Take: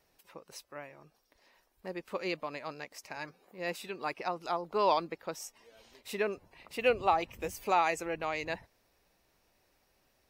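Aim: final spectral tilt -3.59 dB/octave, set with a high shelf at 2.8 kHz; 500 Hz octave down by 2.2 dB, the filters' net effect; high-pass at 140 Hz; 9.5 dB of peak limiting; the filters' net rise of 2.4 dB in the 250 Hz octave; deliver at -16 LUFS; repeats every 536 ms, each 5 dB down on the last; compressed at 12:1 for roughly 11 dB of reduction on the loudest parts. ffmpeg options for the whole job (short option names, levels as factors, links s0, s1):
-af "highpass=140,equalizer=f=250:t=o:g=6.5,equalizer=f=500:t=o:g=-4.5,highshelf=f=2800:g=4,acompressor=threshold=0.0224:ratio=12,alimiter=level_in=2.66:limit=0.0631:level=0:latency=1,volume=0.376,aecho=1:1:536|1072|1608|2144|2680|3216|3752:0.562|0.315|0.176|0.0988|0.0553|0.031|0.0173,volume=25.1"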